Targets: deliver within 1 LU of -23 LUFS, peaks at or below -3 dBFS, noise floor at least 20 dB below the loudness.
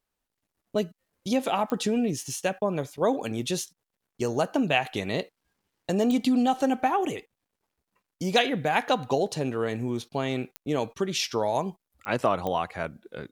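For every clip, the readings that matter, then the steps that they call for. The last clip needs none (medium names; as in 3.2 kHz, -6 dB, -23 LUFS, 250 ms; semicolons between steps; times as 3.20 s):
clicks found 5; loudness -27.5 LUFS; peak level -8.0 dBFS; loudness target -23.0 LUFS
-> de-click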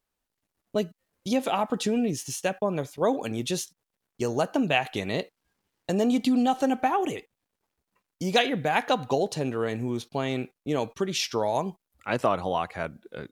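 clicks found 0; loudness -27.5 LUFS; peak level -8.0 dBFS; loudness target -23.0 LUFS
-> trim +4.5 dB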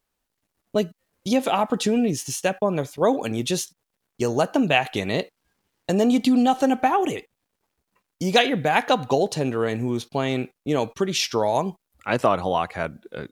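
loudness -23.0 LUFS; peak level -3.5 dBFS; noise floor -81 dBFS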